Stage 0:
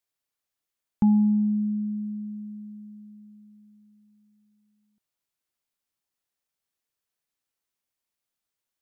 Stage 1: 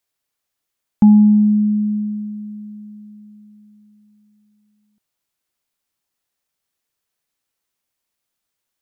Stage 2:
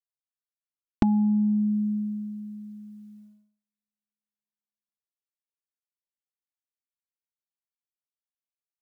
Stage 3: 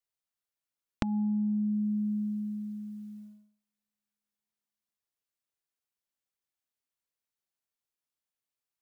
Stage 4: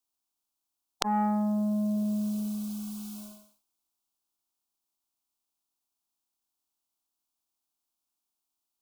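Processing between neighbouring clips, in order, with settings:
dynamic bell 280 Hz, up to +4 dB, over -34 dBFS, Q 0.95; trim +7 dB
gate -42 dBFS, range -42 dB; compression, threshold -13 dBFS, peak gain reduction 6.5 dB; comb 2.7 ms, depth 74%
compression 6:1, threshold -31 dBFS, peak gain reduction 15 dB; trim +3 dB
spectral peaks clipped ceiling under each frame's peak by 25 dB; static phaser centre 500 Hz, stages 6; transformer saturation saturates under 2.6 kHz; trim +7.5 dB

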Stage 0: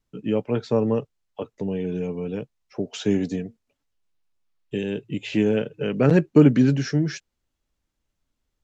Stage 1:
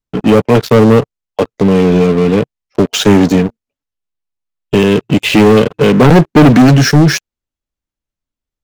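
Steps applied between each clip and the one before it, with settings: waveshaping leveller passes 5; trim +2 dB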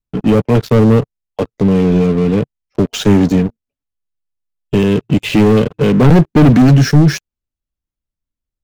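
bass shelf 240 Hz +9.5 dB; trim -7 dB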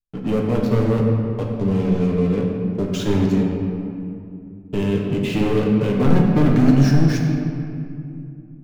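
reverberation RT60 2.6 s, pre-delay 7 ms, DRR -1 dB; trim -11.5 dB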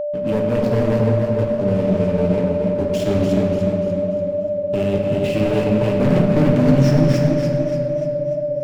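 comb filter that takes the minimum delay 0.39 ms; whistle 590 Hz -20 dBFS; modulated delay 293 ms, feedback 48%, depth 60 cents, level -6 dB; trim -1 dB

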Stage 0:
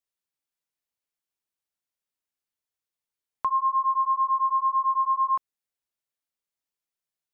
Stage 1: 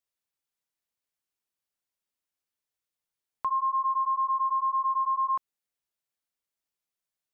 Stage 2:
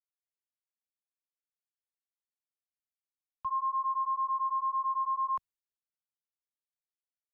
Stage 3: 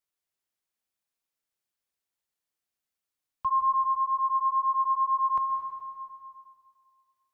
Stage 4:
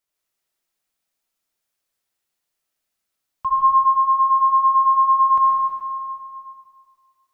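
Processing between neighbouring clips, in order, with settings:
peak limiter -22 dBFS, peak gain reduction 4.5 dB
three bands expanded up and down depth 100%; trim -4 dB
plate-style reverb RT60 2.2 s, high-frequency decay 0.95×, pre-delay 115 ms, DRR 5.5 dB; trim +6.5 dB
algorithmic reverb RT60 1 s, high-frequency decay 1×, pre-delay 45 ms, DRR -2 dB; trim +4.5 dB

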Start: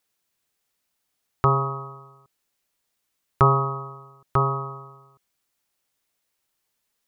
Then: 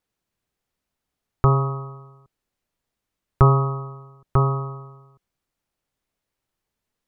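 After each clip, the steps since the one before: tilt EQ -2.5 dB/octave; trim -1.5 dB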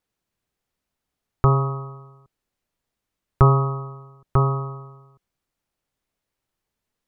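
no audible change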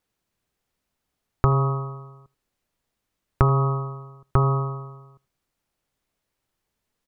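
compression, threshold -17 dBFS, peak gain reduction 8 dB; delay 81 ms -23.5 dB; trim +2.5 dB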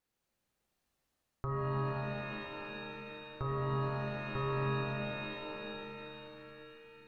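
reverse; compression, threshold -28 dBFS, peak gain reduction 16 dB; reverse; pitch-shifted reverb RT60 3.5 s, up +7 st, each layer -2 dB, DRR -2.5 dB; trim -8 dB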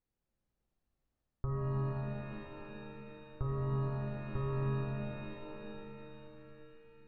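tilt EQ -3 dB/octave; trim -7 dB

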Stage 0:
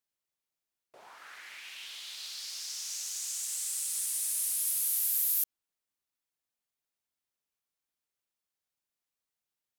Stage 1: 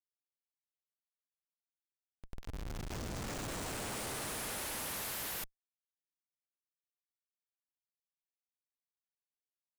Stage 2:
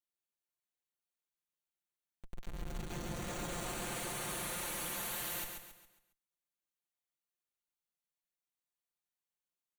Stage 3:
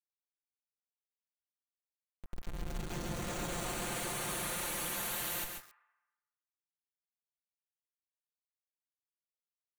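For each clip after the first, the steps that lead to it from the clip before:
Schmitt trigger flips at -31.5 dBFS; trim -2.5 dB
band-stop 5.1 kHz, Q 5.5; comb 5.7 ms, depth 68%; on a send: feedback delay 137 ms, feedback 39%, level -5.5 dB; on the sum: trim -2.5 dB
small samples zeroed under -48.5 dBFS; on a send at -10 dB: Butterworth band-pass 1.4 kHz, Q 1.5 + reverberation RT60 1.1 s, pre-delay 20 ms; on the sum: trim +2.5 dB

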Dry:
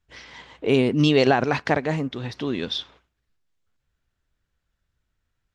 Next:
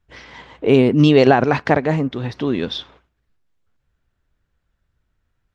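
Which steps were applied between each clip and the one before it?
treble shelf 2.6 kHz -9 dB; trim +6.5 dB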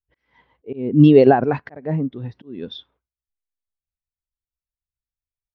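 slow attack 249 ms; spectral contrast expander 1.5:1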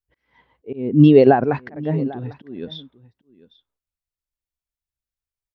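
delay 797 ms -20 dB

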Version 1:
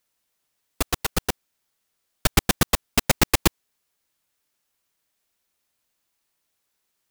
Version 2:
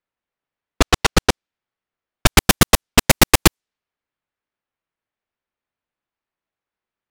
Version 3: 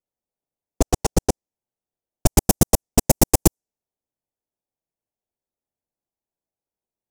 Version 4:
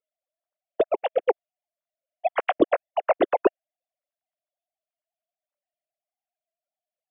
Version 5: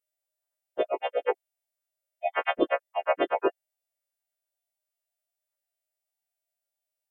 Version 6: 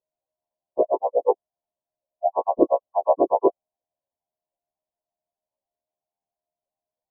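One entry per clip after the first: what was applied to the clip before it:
level-controlled noise filter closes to 2.2 kHz, open at -17 dBFS; waveshaping leveller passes 3; trim +1 dB
high-order bell 2.2 kHz -15.5 dB 2.3 oct; trim -2 dB
formants replaced by sine waves; trim -4.5 dB
partials quantised in pitch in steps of 2 st; trim -3.5 dB
brick-wall FIR low-pass 1.1 kHz; trim +7 dB

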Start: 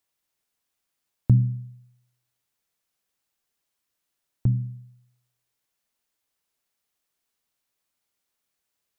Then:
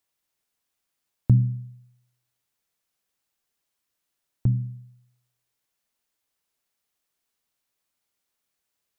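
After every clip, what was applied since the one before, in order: no audible change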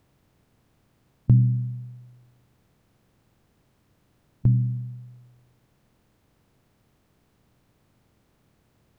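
spectral levelling over time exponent 0.6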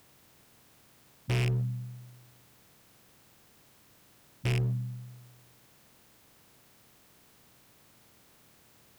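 rattle on loud lows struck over -17 dBFS, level -25 dBFS; tilt EQ +2.5 dB/octave; overload inside the chain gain 31.5 dB; trim +5.5 dB

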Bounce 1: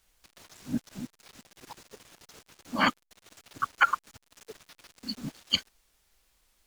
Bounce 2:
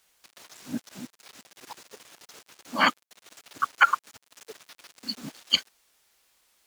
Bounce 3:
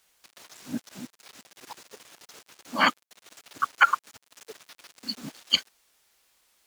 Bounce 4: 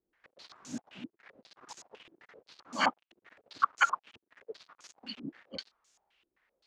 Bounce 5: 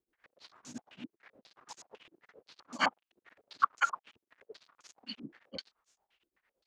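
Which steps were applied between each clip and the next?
high-pass 410 Hz 6 dB/octave; trim +4 dB
no audible change
step-sequenced low-pass 7.7 Hz 340–6700 Hz; trim -7.5 dB
tremolo of two beating tones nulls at 8.8 Hz

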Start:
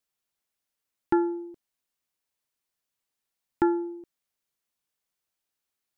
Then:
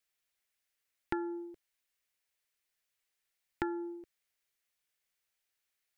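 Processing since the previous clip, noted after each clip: graphic EQ 125/250/1000/2000 Hz -5/-8/-5/+6 dB; compression 5:1, threshold -32 dBFS, peak gain reduction 9 dB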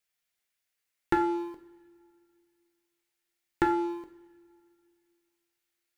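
waveshaping leveller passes 2; reverberation, pre-delay 3 ms, DRR 4 dB; trim +3.5 dB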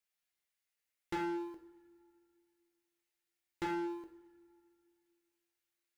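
hard clipper -28 dBFS, distortion -7 dB; feedback comb 67 Hz, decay 0.45 s, harmonics odd, mix 70%; trim +2 dB

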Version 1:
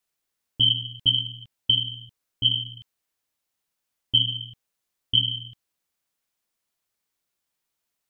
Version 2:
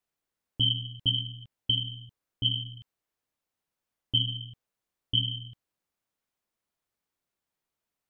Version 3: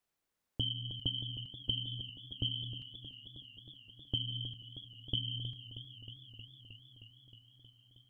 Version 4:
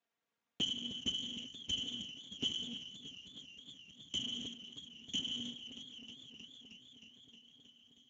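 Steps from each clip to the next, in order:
treble shelf 2 kHz -9 dB
compression 12:1, threshold -33 dBFS, peak gain reduction 13.5 dB; modulated delay 314 ms, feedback 78%, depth 64 cents, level -12 dB; trim +1 dB
comb filter that takes the minimum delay 4.3 ms; trim +3.5 dB; Speex 13 kbps 16 kHz

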